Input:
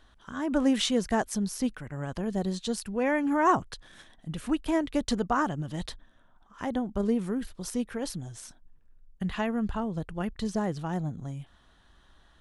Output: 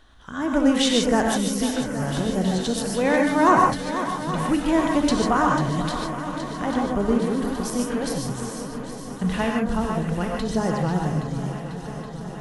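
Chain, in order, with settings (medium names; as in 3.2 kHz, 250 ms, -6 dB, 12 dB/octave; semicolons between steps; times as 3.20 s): shuffle delay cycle 822 ms, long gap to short 1.5:1, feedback 68%, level -11.5 dB; gated-style reverb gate 170 ms rising, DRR 0 dB; trim +4.5 dB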